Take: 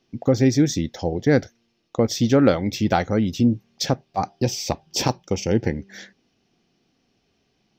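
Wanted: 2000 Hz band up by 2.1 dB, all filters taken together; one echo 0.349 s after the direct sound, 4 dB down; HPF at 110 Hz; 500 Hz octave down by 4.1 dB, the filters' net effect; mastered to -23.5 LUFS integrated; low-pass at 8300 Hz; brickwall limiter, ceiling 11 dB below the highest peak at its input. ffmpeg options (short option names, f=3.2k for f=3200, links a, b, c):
-af "highpass=110,lowpass=8.3k,equalizer=f=500:t=o:g=-5,equalizer=f=2k:t=o:g=3,alimiter=limit=-15dB:level=0:latency=1,aecho=1:1:349:0.631,volume=3dB"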